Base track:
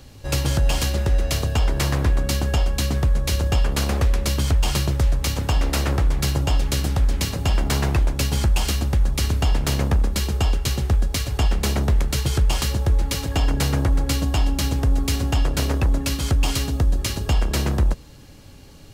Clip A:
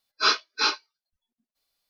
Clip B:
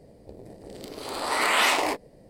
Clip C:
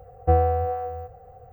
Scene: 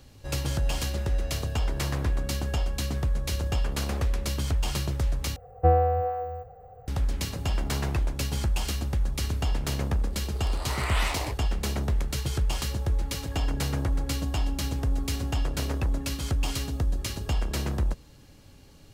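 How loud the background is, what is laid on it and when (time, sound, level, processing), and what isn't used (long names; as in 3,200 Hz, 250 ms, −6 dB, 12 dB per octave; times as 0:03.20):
base track −7.5 dB
0:05.36: overwrite with C −1 dB
0:09.38: mix in B −9 dB
not used: A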